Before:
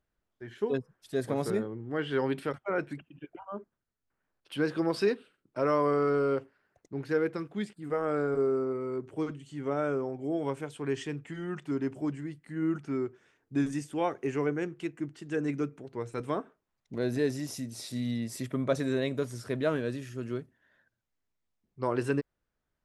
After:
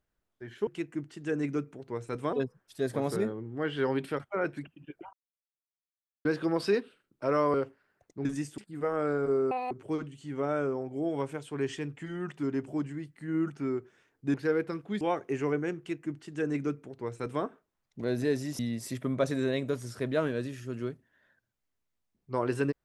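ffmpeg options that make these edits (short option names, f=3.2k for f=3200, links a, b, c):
-filter_complex "[0:a]asplit=13[a][b][c][d][e][f][g][h][i][j][k][l][m];[a]atrim=end=0.672[n];[b]atrim=start=14.718:end=16.382[o];[c]atrim=start=0.668:end=3.47,asetpts=PTS-STARTPTS,afade=t=out:st=2.798:d=0.004:c=hsin[p];[d]atrim=start=3.47:end=4.59,asetpts=PTS-STARTPTS,volume=0[q];[e]atrim=start=4.59:end=5.882,asetpts=PTS-STARTPTS,afade=t=in:d=0.004:c=hsin[r];[f]atrim=start=6.288:end=7.002[s];[g]atrim=start=13.618:end=13.952[t];[h]atrim=start=7.668:end=8.604[u];[i]atrim=start=8.6:end=8.99,asetpts=PTS-STARTPTS,asetrate=85995,aresample=44100[v];[j]atrim=start=8.986:end=13.622[w];[k]atrim=start=6.998:end=7.672[x];[l]atrim=start=13.948:end=17.532[y];[m]atrim=start=18.078[z];[n][o]acrossfade=d=0.004:c1=hsin:c2=hsin[aa];[p][q][r]concat=n=3:v=0:a=1[ab];[aa][ab]acrossfade=d=0.004:c1=hsin:c2=hsin[ac];[ac][s]acrossfade=d=0.004:c1=hsin:c2=hsin[ad];[ad][t]acrossfade=d=0.004:c1=hsin:c2=hsin[ae];[ae][u]acrossfade=d=0.004:c1=hsin:c2=hsin[af];[af][v]acrossfade=d=0.004:c1=hsin:c2=hsin[ag];[ag][w]acrossfade=d=0.004:c1=hsin:c2=hsin[ah];[ah][x]acrossfade=d=0.004:c1=hsin:c2=hsin[ai];[ai][y]acrossfade=d=0.004:c1=hsin:c2=hsin[aj];[aj][z]acrossfade=d=0.004:c1=hsin:c2=hsin"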